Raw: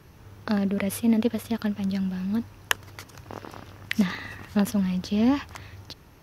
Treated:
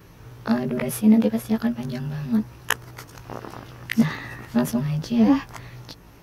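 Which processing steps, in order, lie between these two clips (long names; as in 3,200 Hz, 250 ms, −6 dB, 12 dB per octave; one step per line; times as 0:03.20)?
every overlapping window played backwards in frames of 36 ms
dynamic equaliser 3,400 Hz, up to −5 dB, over −53 dBFS, Q 0.83
level +7 dB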